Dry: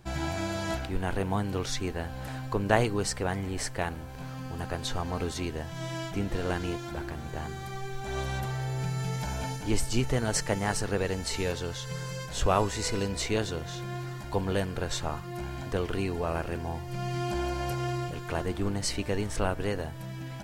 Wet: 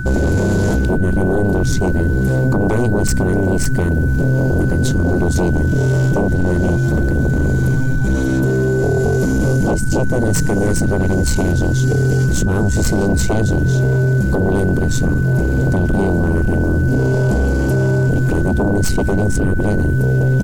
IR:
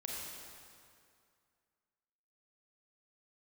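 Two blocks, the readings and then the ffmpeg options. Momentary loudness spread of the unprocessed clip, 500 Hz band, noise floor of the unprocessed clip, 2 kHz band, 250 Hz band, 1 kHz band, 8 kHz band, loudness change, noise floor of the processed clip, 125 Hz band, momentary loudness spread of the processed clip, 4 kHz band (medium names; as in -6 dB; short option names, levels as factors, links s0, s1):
9 LU, +13.5 dB, -39 dBFS, +16.0 dB, +17.5 dB, +6.0 dB, +9.5 dB, +15.5 dB, -16 dBFS, +19.0 dB, 2 LU, +3.0 dB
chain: -af "tiltshelf=f=730:g=10,acompressor=threshold=0.0447:ratio=3,firequalizer=gain_entry='entry(270,0);entry(420,-16);entry(6700,5)':delay=0.05:min_phase=1,aeval=exprs='0.266*sin(PI/2*8.91*val(0)/0.266)':c=same,aeval=exprs='val(0)+0.0447*sin(2*PI*1500*n/s)':c=same"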